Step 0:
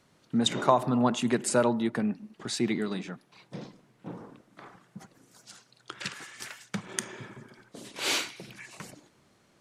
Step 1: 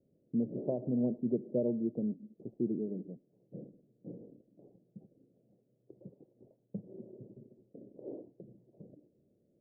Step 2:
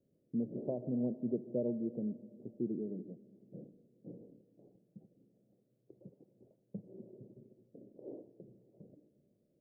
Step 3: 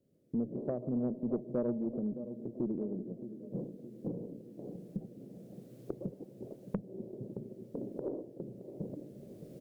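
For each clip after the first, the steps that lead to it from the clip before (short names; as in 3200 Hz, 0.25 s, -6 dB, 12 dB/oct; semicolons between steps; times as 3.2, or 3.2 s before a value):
steep low-pass 570 Hz 48 dB/oct; low shelf 110 Hz -7 dB; gain -4 dB
reverb RT60 2.8 s, pre-delay 95 ms, DRR 16.5 dB; gain -3.5 dB
recorder AGC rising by 12 dB/s; on a send: feedback echo 0.62 s, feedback 52%, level -12.5 dB; on the sum: tube stage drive 25 dB, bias 0.35; gain +3 dB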